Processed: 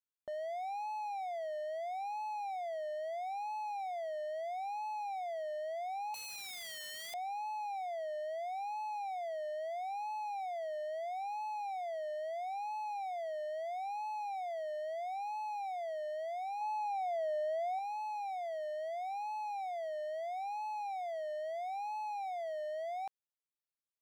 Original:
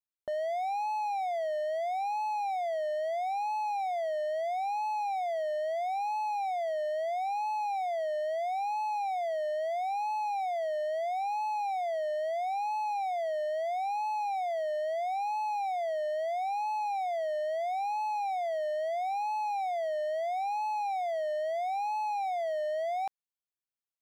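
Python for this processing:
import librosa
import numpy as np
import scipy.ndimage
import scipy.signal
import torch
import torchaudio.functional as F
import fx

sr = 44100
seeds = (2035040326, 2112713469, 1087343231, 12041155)

y = fx.overflow_wrap(x, sr, gain_db=33.0, at=(6.14, 7.14))
y = fx.low_shelf(y, sr, hz=480.0, db=12.0, at=(16.61, 17.79))
y = F.gain(torch.from_numpy(y), -7.5).numpy()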